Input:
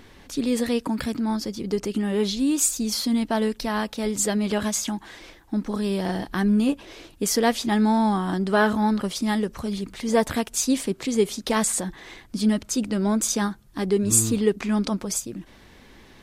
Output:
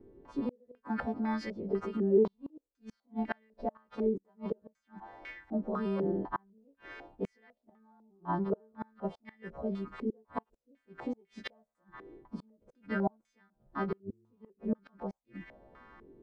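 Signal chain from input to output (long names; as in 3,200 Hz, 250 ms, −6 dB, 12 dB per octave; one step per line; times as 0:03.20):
every partial snapped to a pitch grid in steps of 2 semitones
gate with flip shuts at −14 dBFS, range −37 dB
low-pass on a step sequencer 4 Hz 390–2,000 Hz
level −8 dB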